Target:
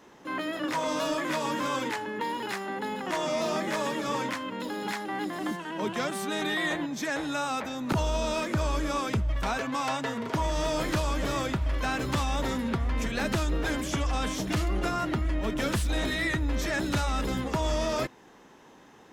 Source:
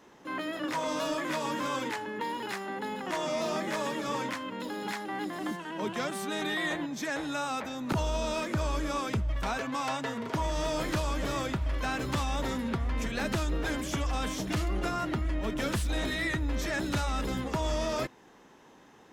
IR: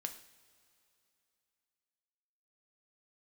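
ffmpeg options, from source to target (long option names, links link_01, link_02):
-filter_complex "[0:a]asettb=1/sr,asplit=3[link_01][link_02][link_03];[link_01]atrim=end=13.884[link_04];[link_02]atrim=start=13.88:end=14.35,asetpts=PTS-STARTPTS,afade=type=in:duration=0.004:curve=qsin,afade=type=out:start_time=0.466:duration=0.004:curve=qsin,lowpass=12000[link_05];[link_03]atrim=start=14.346[link_06];[link_04][link_05]acrossfade=duration=0.004:curve1=hsin:curve2=qsin[link_07];[link_07][link_06]acrossfade=duration=0.004:curve1=qsin:curve2=hsin,volume=2.5dB"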